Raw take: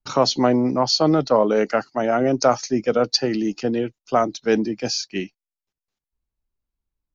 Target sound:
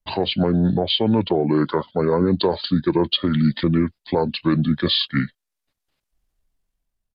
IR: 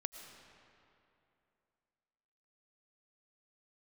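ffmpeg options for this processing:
-af "asetrate=31183,aresample=44100,atempo=1.41421,dynaudnorm=f=450:g=5:m=13dB,alimiter=limit=-11.5dB:level=0:latency=1:release=238,volume=2.5dB"

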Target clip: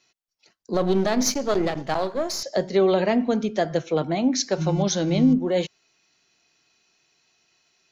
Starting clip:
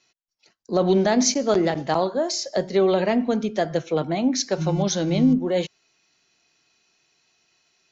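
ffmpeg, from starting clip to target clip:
-filter_complex "[0:a]asettb=1/sr,asplit=3[a][b][c];[a]atrim=end=0.744[d];[b]atrim=start=0.74:end=2.43,asetpts=PTS-STARTPTS,afade=t=in:d=0.004:c=qsin,afade=t=out:st=1.686:d=0.004:c=qsin,aeval=exprs='if(lt(val(0),0),0.447*val(0),val(0))':c=same[e];[c]atrim=start=2.426[f];[d][e]acrossfade=d=0.004:c1=hsin:c2=qsin[g];[g][f]acrossfade=d=0.004:c1=qsin:c2=hsin"

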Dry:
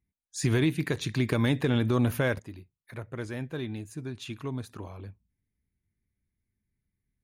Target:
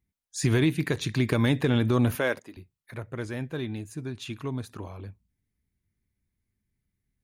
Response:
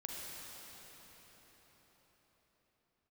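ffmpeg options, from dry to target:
-filter_complex "[0:a]asettb=1/sr,asplit=3[a][b][c];[a]atrim=end=2.154[d];[b]atrim=start=2.15:end=2.57,asetpts=PTS-STARTPTS,afade=t=in:d=0.004:c=qsin,afade=t=out:st=0.416:d=0.004:c=qsin,highpass=300[e];[c]atrim=start=2.566[f];[d][e]acrossfade=d=0.004:c1=hsin:c2=qsin[g];[g][f]acrossfade=d=0.004:c1=qsin:c2=hsin,volume=2dB"

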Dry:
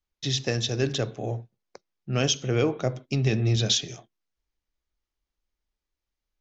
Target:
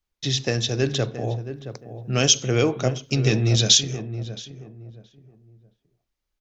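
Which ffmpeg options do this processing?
-filter_complex "[0:a]asettb=1/sr,asplit=3[a][b][c];[a]atrim=end=1.384[d];[b]atrim=start=1.38:end=3.83,asetpts=PTS-STARTPTS,afade=t=in:d=0.004:c=qsin,afade=t=out:st=2.446:d=0.004:c=qsin,highshelf=f=4.7k:g=11[e];[c]atrim=start=3.826[f];[d][e]acrossfade=d=0.004:c1=hsin:c2=qsin[g];[g][f]acrossfade=d=0.004:c1=qsin:c2=hsin,asplit=2[h][i];[i]adelay=672,lowpass=f=1.1k:p=1,volume=-10.5dB,asplit=2[j][k];[k]adelay=672,lowpass=f=1.1k:p=1,volume=0.29,asplit=2[l][m];[m]adelay=672,lowpass=f=1.1k:p=1,volume=0.29[n];[h][j][l][n]amix=inputs=4:normalize=0,volume=3dB"

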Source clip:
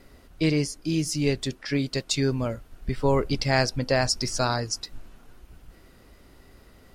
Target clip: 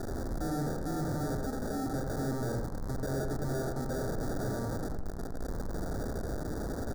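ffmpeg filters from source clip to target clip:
-filter_complex "[0:a]aeval=exprs='val(0)+0.5*0.0708*sgn(val(0))':c=same,asettb=1/sr,asplit=3[a][b][c];[a]atrim=end=1.374[d];[b]atrim=start=1.37:end=1.86,asetpts=PTS-STARTPTS,afade=t=in:d=0.004:c=qsin,afade=t=out:st=0.486:d=0.004:c=qsin,aecho=1:1:4.2:0.85,atrim=end_sample=21609[e];[c]atrim=start=1.856[f];[d][e]acrossfade=d=0.004:c1=hsin:c2=qsin[g];[g][f]acrossfade=d=0.004:c1=qsin:c2=hsin,acrusher=samples=42:mix=1:aa=0.000001,asoftclip=type=tanh:threshold=-27.5dB,asuperstop=centerf=2700:order=4:qfactor=0.92,asplit=2[h][i];[i]adelay=88,lowpass=f=1.9k:p=1,volume=-4dB,asplit=2[j][k];[k]adelay=88,lowpass=f=1.9k:p=1,volume=0.44,asplit=2[l][m];[m]adelay=88,lowpass=f=1.9k:p=1,volume=0.44,asplit=2[n][o];[o]adelay=88,lowpass=f=1.9k:p=1,volume=0.44,asplit=2[p][q];[q]adelay=88,lowpass=f=1.9k:p=1,volume=0.44,asplit=2[r][s];[s]adelay=88,lowpass=f=1.9k:p=1,volume=0.44[t];[j][l][n][p][r][t]amix=inputs=6:normalize=0[u];[h][u]amix=inputs=2:normalize=0,volume=-5.5dB"

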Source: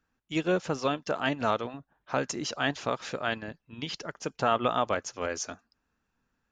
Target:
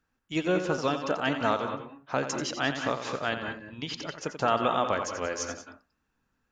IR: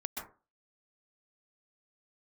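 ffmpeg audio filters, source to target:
-filter_complex "[0:a]asplit=2[a][b];[1:a]atrim=start_sample=2205,asetrate=57330,aresample=44100,adelay=87[c];[b][c]afir=irnorm=-1:irlink=0,volume=-4.5dB[d];[a][d]amix=inputs=2:normalize=0"

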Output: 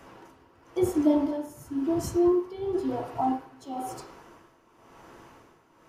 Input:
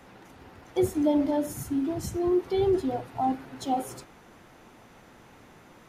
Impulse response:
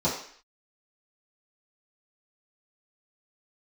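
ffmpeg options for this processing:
-filter_complex "[0:a]asplit=2[a][b];[b]highpass=f=340:w=0.5412,highpass=f=340:w=1.3066,equalizer=f=580:t=q:w=4:g=-4,equalizer=f=1.1k:t=q:w=4:g=9,equalizer=f=1.7k:t=q:w=4:g=4,equalizer=f=3.1k:t=q:w=4:g=6,equalizer=f=6.3k:t=q:w=4:g=-7,lowpass=f=7.8k:w=0.5412,lowpass=f=7.8k:w=1.3066[c];[1:a]atrim=start_sample=2205,lowshelf=f=150:g=10[d];[c][d]afir=irnorm=-1:irlink=0,volume=-14dB[e];[a][e]amix=inputs=2:normalize=0,tremolo=f=0.97:d=0.77"

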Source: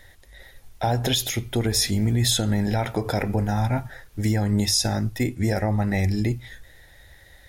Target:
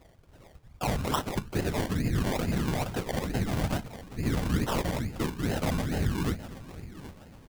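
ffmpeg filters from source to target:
-filter_complex "[0:a]afftfilt=real='hypot(re,im)*cos(2*PI*random(0))':imag='hypot(re,im)*sin(2*PI*random(1))':win_size=512:overlap=0.75,asplit=2[a][b];[b]adelay=770,lowpass=f=2.1k:p=1,volume=-15dB,asplit=2[c][d];[d]adelay=770,lowpass=f=2.1k:p=1,volume=0.41,asplit=2[e][f];[f]adelay=770,lowpass=f=2.1k:p=1,volume=0.41,asplit=2[g][h];[h]adelay=770,lowpass=f=2.1k:p=1,volume=0.41[i];[a][c][e][g][i]amix=inputs=5:normalize=0,acrusher=samples=27:mix=1:aa=0.000001:lfo=1:lforange=16.2:lforate=2.3"

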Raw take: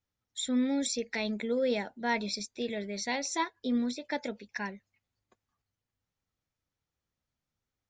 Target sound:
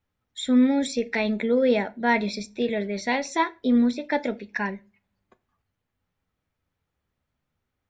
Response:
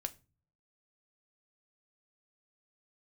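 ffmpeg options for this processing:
-filter_complex "[0:a]asplit=2[a][b];[1:a]atrim=start_sample=2205,lowpass=3.4k[c];[b][c]afir=irnorm=-1:irlink=0,volume=6.5dB[d];[a][d]amix=inputs=2:normalize=0"

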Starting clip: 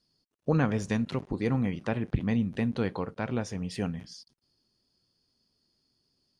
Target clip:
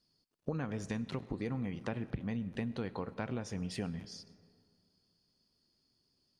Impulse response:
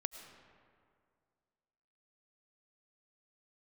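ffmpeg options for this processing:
-filter_complex "[0:a]acompressor=threshold=-31dB:ratio=10,asplit=2[a][b];[1:a]atrim=start_sample=2205[c];[b][c]afir=irnorm=-1:irlink=0,volume=-5dB[d];[a][d]amix=inputs=2:normalize=0,volume=-5.5dB"

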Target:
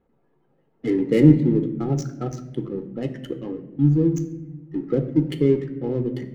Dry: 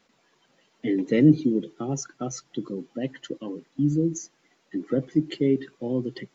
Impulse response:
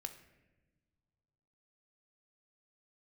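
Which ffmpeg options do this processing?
-filter_complex "[0:a]adynamicsmooth=sensitivity=8:basefreq=790,lowshelf=f=160:g=11[a];[1:a]atrim=start_sample=2205[b];[a][b]afir=irnorm=-1:irlink=0,volume=4.5dB"

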